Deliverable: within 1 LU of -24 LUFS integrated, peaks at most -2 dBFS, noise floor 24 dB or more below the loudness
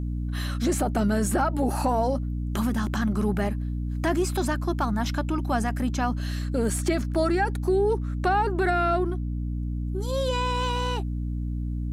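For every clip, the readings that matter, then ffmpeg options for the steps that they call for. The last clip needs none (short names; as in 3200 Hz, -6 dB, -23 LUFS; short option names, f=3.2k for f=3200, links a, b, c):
hum 60 Hz; harmonics up to 300 Hz; hum level -26 dBFS; loudness -26.5 LUFS; peak -12.5 dBFS; loudness target -24.0 LUFS
-> -af "bandreject=f=60:t=h:w=6,bandreject=f=120:t=h:w=6,bandreject=f=180:t=h:w=6,bandreject=f=240:t=h:w=6,bandreject=f=300:t=h:w=6"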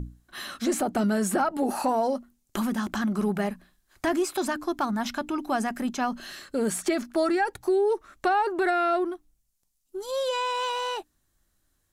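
hum none; loudness -27.5 LUFS; peak -14.0 dBFS; loudness target -24.0 LUFS
-> -af "volume=3.5dB"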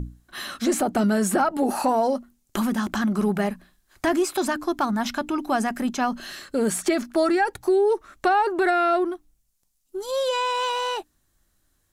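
loudness -24.0 LUFS; peak -10.5 dBFS; noise floor -69 dBFS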